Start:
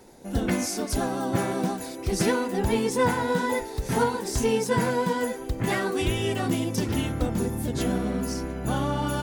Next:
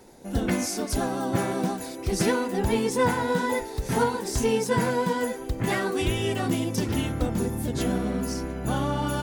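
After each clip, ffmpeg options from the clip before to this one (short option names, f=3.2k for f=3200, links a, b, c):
-af anull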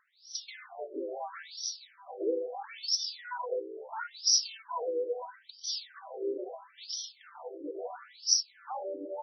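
-af "highshelf=f=4k:t=q:w=3:g=13.5,afftfilt=real='re*between(b*sr/1024,410*pow(4300/410,0.5+0.5*sin(2*PI*0.75*pts/sr))/1.41,410*pow(4300/410,0.5+0.5*sin(2*PI*0.75*pts/sr))*1.41)':imag='im*between(b*sr/1024,410*pow(4300/410,0.5+0.5*sin(2*PI*0.75*pts/sr))/1.41,410*pow(4300/410,0.5+0.5*sin(2*PI*0.75*pts/sr))*1.41)':win_size=1024:overlap=0.75,volume=-3.5dB"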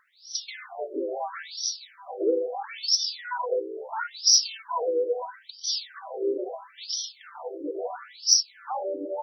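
-af "acontrast=76"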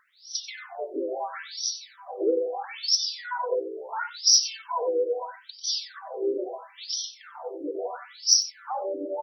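-af "aecho=1:1:92:0.178"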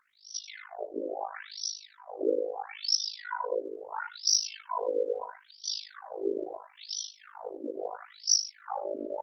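-af "tremolo=f=52:d=0.974" -ar 48000 -c:a libopus -b:a 20k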